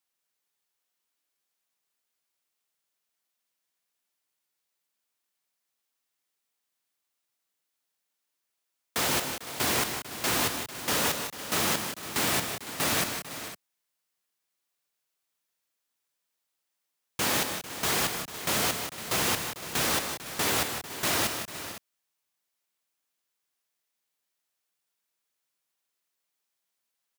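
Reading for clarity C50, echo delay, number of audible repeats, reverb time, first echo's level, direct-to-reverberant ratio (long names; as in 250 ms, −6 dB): no reverb audible, 155 ms, 3, no reverb audible, −9.5 dB, no reverb audible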